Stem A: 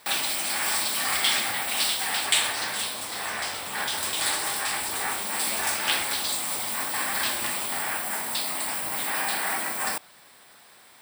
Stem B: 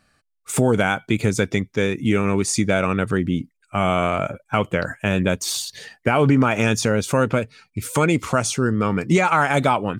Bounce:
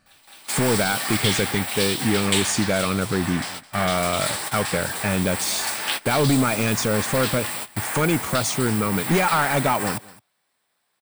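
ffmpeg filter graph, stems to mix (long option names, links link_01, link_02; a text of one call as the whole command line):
ffmpeg -i stem1.wav -i stem2.wav -filter_complex "[0:a]volume=-0.5dB,asplit=2[link_01][link_02];[link_02]volume=-20dB[link_03];[1:a]asoftclip=type=hard:threshold=-13dB,volume=-1.5dB,asplit=3[link_04][link_05][link_06];[link_05]volume=-23dB[link_07];[link_06]apad=whole_len=485578[link_08];[link_01][link_08]sidechaingate=range=-28dB:threshold=-47dB:ratio=16:detection=peak[link_09];[link_03][link_07]amix=inputs=2:normalize=0,aecho=0:1:213:1[link_10];[link_09][link_04][link_10]amix=inputs=3:normalize=0" out.wav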